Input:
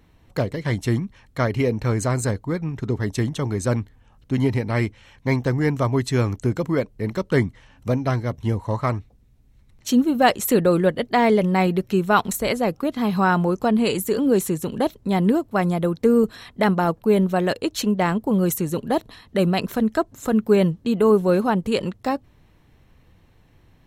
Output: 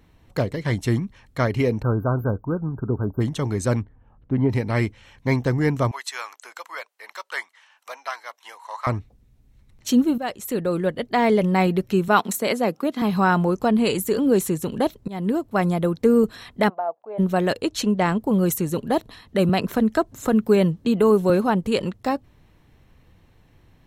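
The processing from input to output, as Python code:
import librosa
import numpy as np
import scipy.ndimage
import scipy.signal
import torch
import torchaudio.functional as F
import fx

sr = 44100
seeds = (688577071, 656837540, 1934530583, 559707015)

y = fx.brickwall_bandstop(x, sr, low_hz=1600.0, high_hz=13000.0, at=(1.81, 3.2), fade=0.02)
y = fx.lowpass(y, sr, hz=1300.0, slope=12, at=(3.81, 4.49), fade=0.02)
y = fx.highpass(y, sr, hz=850.0, slope=24, at=(5.91, 8.87))
y = fx.highpass(y, sr, hz=170.0, slope=24, at=(12.08, 13.02))
y = fx.ladder_bandpass(y, sr, hz=740.0, resonance_pct=70, at=(16.68, 17.18), fade=0.02)
y = fx.lowpass(y, sr, hz=11000.0, slope=12, at=(17.68, 18.18))
y = fx.band_squash(y, sr, depth_pct=40, at=(19.49, 21.3))
y = fx.edit(y, sr, fx.fade_in_from(start_s=10.18, length_s=1.31, floor_db=-14.0),
    fx.fade_in_from(start_s=15.08, length_s=0.58, curve='qsin', floor_db=-19.0), tone=tone)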